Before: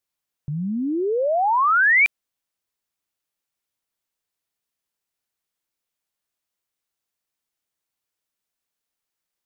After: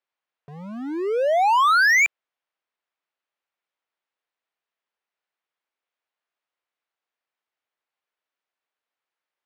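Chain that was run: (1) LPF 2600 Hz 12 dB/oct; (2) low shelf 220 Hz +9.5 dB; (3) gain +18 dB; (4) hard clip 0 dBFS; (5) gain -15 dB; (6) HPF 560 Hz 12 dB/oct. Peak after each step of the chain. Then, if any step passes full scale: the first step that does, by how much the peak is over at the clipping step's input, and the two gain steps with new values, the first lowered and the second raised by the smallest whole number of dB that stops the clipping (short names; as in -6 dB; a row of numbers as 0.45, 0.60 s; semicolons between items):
-13.5, -13.5, +4.5, 0.0, -15.0, -12.5 dBFS; step 3, 4.5 dB; step 3 +13 dB, step 5 -10 dB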